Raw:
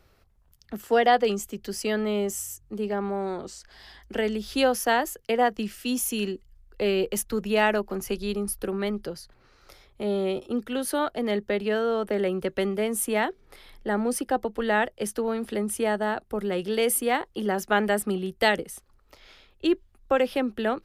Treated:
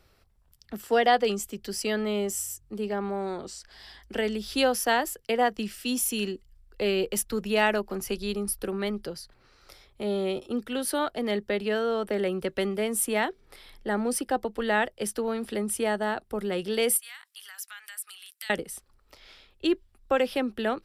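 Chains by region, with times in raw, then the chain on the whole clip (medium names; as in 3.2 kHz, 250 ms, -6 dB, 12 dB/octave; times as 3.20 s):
16.97–18.50 s: high-pass 1.4 kHz 24 dB/octave + compression 3:1, threshold -45 dBFS + peaking EQ 13 kHz +10.5 dB 1.5 oct
whole clip: peaking EQ 6.3 kHz +4.5 dB 2.4 oct; band-stop 6.5 kHz, Q 10; trim -2 dB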